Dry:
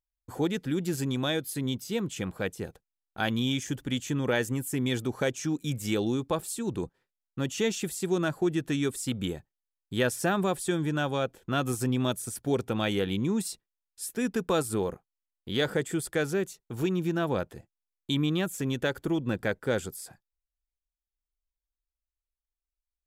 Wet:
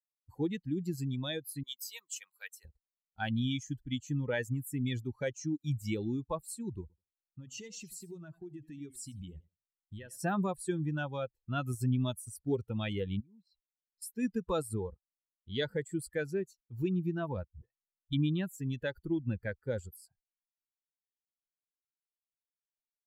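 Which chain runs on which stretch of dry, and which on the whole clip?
1.63–2.65 s: high-pass 930 Hz + treble shelf 5 kHz +10.5 dB
6.81–10.18 s: compression 5:1, threshold -31 dBFS + modulated delay 82 ms, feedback 34%, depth 142 cents, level -10.5 dB
13.20–14.02 s: compression 10:1, threshold -40 dBFS + low-pass 3.8 kHz
17.48–18.13 s: tone controls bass +4 dB, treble -13 dB + hum notches 60/120/180 Hz + phase dispersion highs, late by 127 ms, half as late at 340 Hz
whole clip: expander on every frequency bin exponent 2; bass shelf 140 Hz +10 dB; trim -3 dB

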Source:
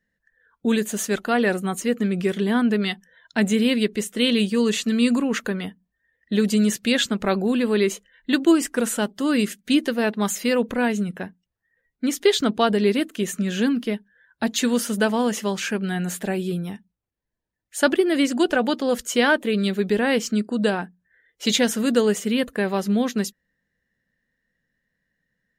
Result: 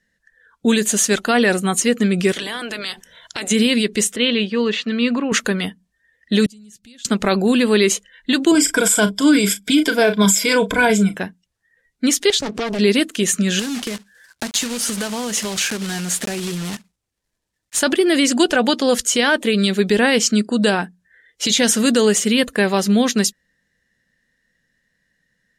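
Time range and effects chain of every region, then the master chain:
2.32–3.50 s: spectral peaks clipped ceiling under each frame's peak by 22 dB + compression 5:1, threshold -33 dBFS
4.16–5.32 s: high-pass 370 Hz 6 dB/octave + distance through air 340 m
6.46–7.05 s: amplifier tone stack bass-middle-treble 10-0-1 + compression 3:1, threshold -52 dBFS
8.51–11.16 s: rippled EQ curve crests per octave 1.7, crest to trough 15 dB + phaser 1.7 Hz, delay 3.7 ms, feedback 29% + doubling 36 ms -12 dB
12.30–12.79 s: compression, threshold -29 dBFS + waveshaping leveller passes 1 + loudspeaker Doppler distortion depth 0.81 ms
13.59–17.83 s: block-companded coder 3-bit + compression 12:1, threshold -27 dBFS
whole clip: low-pass 9.3 kHz 12 dB/octave; treble shelf 3 kHz +11 dB; peak limiter -11.5 dBFS; trim +5.5 dB

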